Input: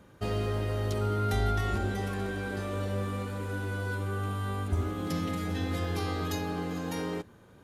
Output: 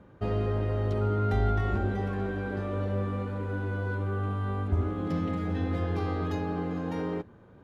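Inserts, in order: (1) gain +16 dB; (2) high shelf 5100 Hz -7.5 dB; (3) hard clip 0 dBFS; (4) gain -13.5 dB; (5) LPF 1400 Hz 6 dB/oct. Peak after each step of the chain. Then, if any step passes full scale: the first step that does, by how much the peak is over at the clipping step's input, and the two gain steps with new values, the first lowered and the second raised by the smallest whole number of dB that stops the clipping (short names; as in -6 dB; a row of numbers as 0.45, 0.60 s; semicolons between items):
-2.0, -2.0, -2.0, -15.5, -16.0 dBFS; no overload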